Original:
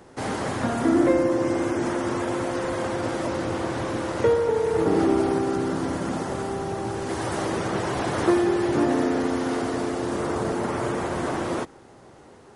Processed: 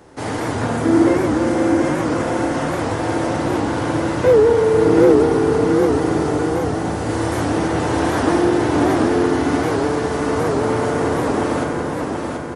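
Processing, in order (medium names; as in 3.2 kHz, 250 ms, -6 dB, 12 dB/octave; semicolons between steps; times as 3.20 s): feedback delay 732 ms, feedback 45%, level -4 dB; FDN reverb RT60 2.5 s, low-frequency decay 1.3×, high-frequency decay 0.4×, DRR 0 dB; warped record 78 rpm, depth 160 cents; trim +2 dB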